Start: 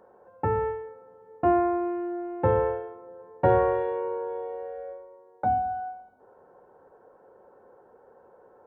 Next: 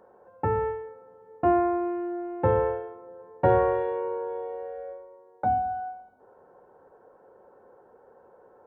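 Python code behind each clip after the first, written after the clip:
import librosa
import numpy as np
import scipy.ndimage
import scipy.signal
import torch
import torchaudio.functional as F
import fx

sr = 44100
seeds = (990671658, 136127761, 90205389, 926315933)

y = x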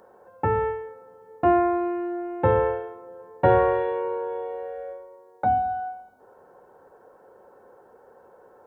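y = fx.high_shelf(x, sr, hz=2500.0, db=10.5)
y = F.gain(torch.from_numpy(y), 2.0).numpy()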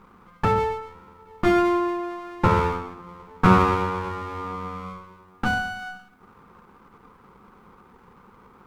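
y = fx.lower_of_two(x, sr, delay_ms=0.81)
y = fx.small_body(y, sr, hz=(200.0, 1200.0), ring_ms=60, db=11)
y = F.gain(torch.from_numpy(y), 2.0).numpy()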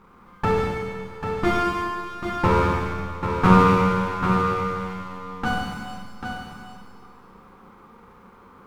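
y = x + 10.0 ** (-7.0 / 20.0) * np.pad(x, (int(792 * sr / 1000.0), 0))[:len(x)]
y = fx.rev_schroeder(y, sr, rt60_s=2.0, comb_ms=32, drr_db=-1.0)
y = F.gain(torch.from_numpy(y), -1.5).numpy()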